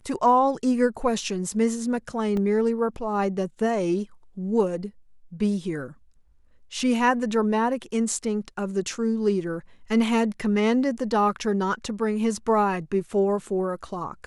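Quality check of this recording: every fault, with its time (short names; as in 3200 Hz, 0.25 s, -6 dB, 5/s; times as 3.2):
2.37 gap 2.2 ms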